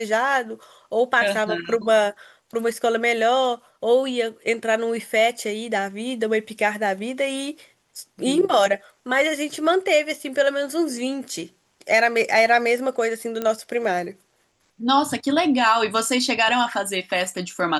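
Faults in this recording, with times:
13.42 s: pop -13 dBFS

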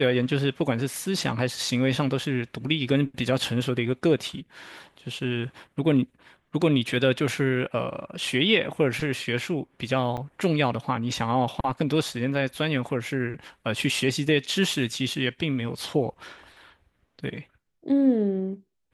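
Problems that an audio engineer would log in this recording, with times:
10.17–10.18 s: dropout 7.2 ms

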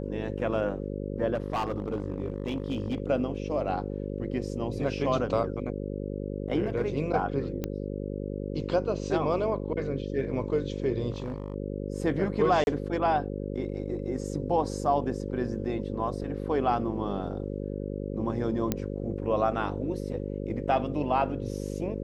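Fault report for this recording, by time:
buzz 50 Hz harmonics 11 -34 dBFS
1.34–3.00 s: clipped -25 dBFS
7.64 s: pop -17 dBFS
11.10–11.54 s: clipped -28.5 dBFS
12.64–12.67 s: dropout 31 ms
18.72 s: pop -12 dBFS

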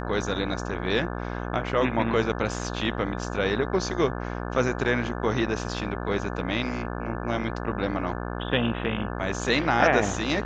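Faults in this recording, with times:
buzz 60 Hz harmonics 29 -32 dBFS

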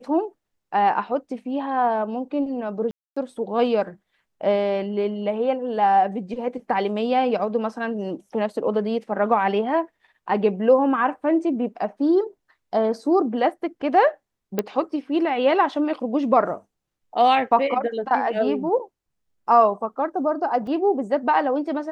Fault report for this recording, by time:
2.91–3.17 s: dropout 255 ms
14.59 s: pop -9 dBFS
20.67 s: dropout 2.8 ms

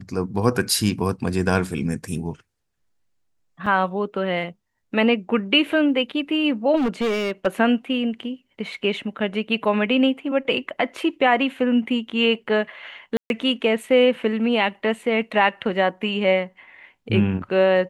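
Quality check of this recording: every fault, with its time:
3.66 s: dropout 4.4 ms
6.76–7.47 s: clipped -18.5 dBFS
13.17–13.30 s: dropout 131 ms

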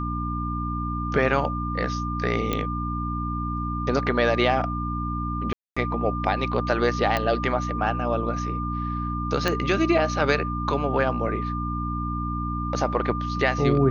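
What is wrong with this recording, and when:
hum 60 Hz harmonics 5 -29 dBFS
whine 1.2 kHz -30 dBFS
2.53 s: pop -11 dBFS
5.53–5.76 s: dropout 235 ms
7.17 s: pop -10 dBFS
9.48 s: pop -9 dBFS

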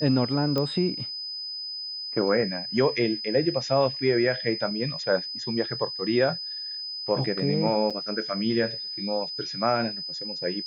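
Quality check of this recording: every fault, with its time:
whine 5 kHz -32 dBFS
0.58 s: pop -14 dBFS
7.90–7.91 s: dropout 5.9 ms

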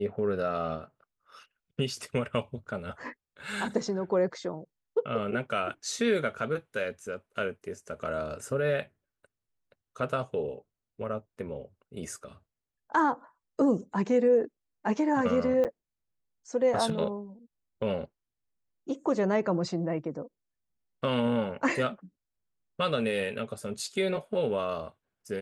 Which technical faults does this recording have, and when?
15.64–15.65 s: dropout 8.4 ms

